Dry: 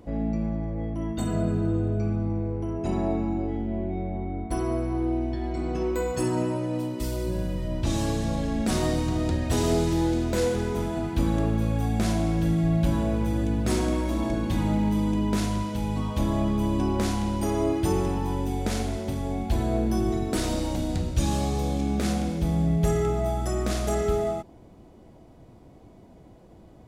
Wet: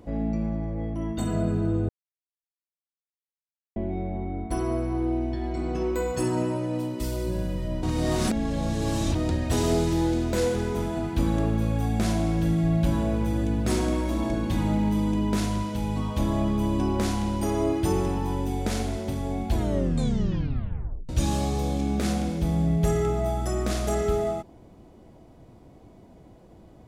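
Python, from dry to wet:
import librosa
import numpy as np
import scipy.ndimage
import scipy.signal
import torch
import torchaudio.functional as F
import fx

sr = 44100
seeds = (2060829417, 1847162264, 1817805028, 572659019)

y = fx.edit(x, sr, fx.silence(start_s=1.89, length_s=1.87),
    fx.reverse_span(start_s=7.83, length_s=1.32),
    fx.tape_stop(start_s=19.54, length_s=1.55), tone=tone)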